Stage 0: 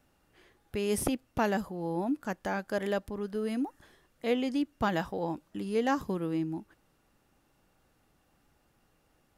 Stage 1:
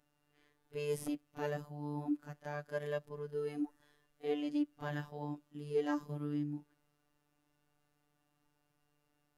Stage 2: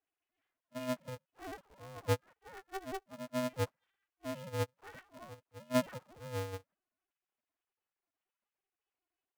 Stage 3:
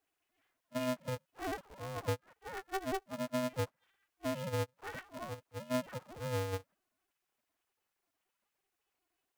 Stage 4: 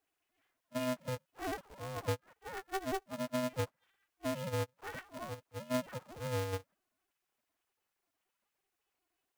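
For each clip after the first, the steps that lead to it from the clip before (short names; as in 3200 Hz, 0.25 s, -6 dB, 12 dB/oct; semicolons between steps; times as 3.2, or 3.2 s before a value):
reverse echo 33 ms -19.5 dB; harmonic-percussive split percussive -13 dB; robotiser 147 Hz; gain -3 dB
sine-wave speech; polarity switched at an audio rate 190 Hz; gain -1 dB
compressor 6:1, threshold -40 dBFS, peak gain reduction 14 dB; gain +7.5 dB
short-mantissa float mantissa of 2-bit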